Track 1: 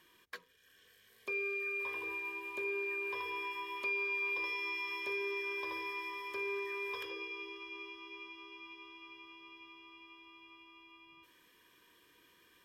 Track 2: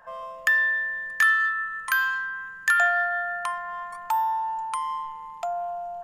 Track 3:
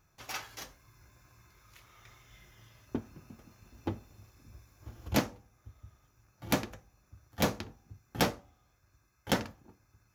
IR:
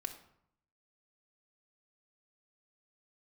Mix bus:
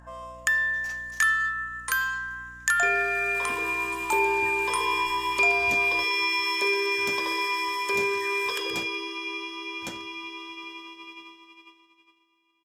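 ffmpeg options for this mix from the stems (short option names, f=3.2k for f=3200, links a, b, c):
-filter_complex "[0:a]agate=range=-25dB:threshold=-54dB:ratio=16:detection=peak,highpass=f=130:w=0.5412,highpass=f=130:w=1.3066,dynaudnorm=f=230:g=13:m=10dB,adelay=1550,volume=2.5dB,asplit=2[a][b];[b]volume=-10.5dB[c];[1:a]aeval=exprs='val(0)+0.00501*(sin(2*PI*60*n/s)+sin(2*PI*2*60*n/s)/2+sin(2*PI*3*60*n/s)/3+sin(2*PI*4*60*n/s)/4+sin(2*PI*5*60*n/s)/5)':c=same,volume=-3.5dB[d];[2:a]adelay=550,volume=-12.5dB[e];[c]aecho=0:1:124|248|372|496|620|744:1|0.41|0.168|0.0689|0.0283|0.0116[f];[a][d][e][f]amix=inputs=4:normalize=0,equalizer=f=7.6k:t=o:w=0.95:g=13"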